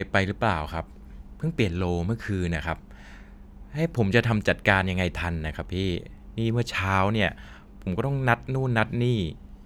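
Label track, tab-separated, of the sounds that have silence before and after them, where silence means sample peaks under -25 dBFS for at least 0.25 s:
1.430000	2.730000	sound
3.760000	5.980000	sound
6.380000	7.290000	sound
7.870000	9.300000	sound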